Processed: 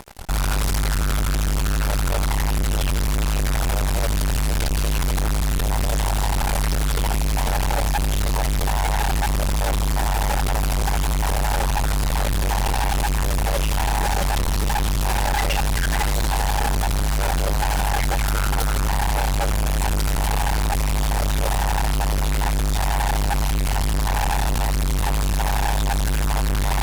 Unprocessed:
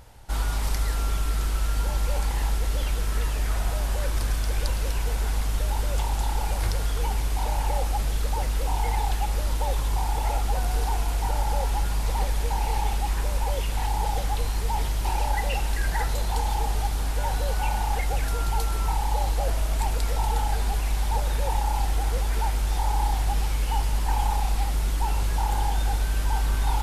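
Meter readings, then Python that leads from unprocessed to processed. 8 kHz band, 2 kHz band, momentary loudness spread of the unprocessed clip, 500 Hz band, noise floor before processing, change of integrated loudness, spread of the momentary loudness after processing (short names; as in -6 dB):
+7.5 dB, +8.5 dB, 2 LU, +6.0 dB, -27 dBFS, +4.5 dB, 1 LU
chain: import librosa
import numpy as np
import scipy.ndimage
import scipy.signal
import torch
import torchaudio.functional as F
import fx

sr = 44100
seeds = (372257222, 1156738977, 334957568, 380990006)

y = x + 0.9 * np.pad(x, (int(5.0 * sr / 1000.0), 0))[:len(x)]
y = fx.fuzz(y, sr, gain_db=36.0, gate_db=-43.0)
y = y * librosa.db_to_amplitude(-5.5)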